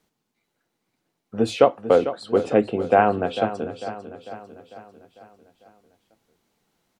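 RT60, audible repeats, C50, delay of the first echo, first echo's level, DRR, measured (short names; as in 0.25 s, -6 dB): none, 5, none, 0.448 s, -12.0 dB, none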